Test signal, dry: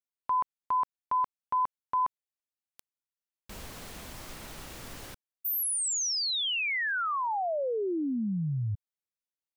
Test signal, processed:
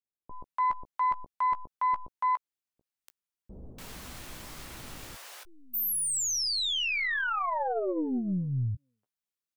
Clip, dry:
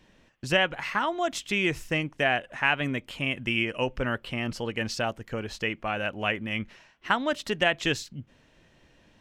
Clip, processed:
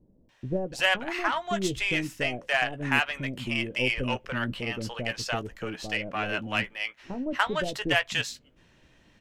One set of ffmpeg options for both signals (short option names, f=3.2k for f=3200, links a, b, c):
-filter_complex "[0:a]asplit=2[a][b];[b]adelay=16,volume=-11dB[c];[a][c]amix=inputs=2:normalize=0,aeval=exprs='0.398*(cos(1*acos(clip(val(0)/0.398,-1,1)))-cos(1*PI/2))+0.0158*(cos(8*acos(clip(val(0)/0.398,-1,1)))-cos(8*PI/2))':c=same,acrossover=split=560[d][e];[e]adelay=290[f];[d][f]amix=inputs=2:normalize=0"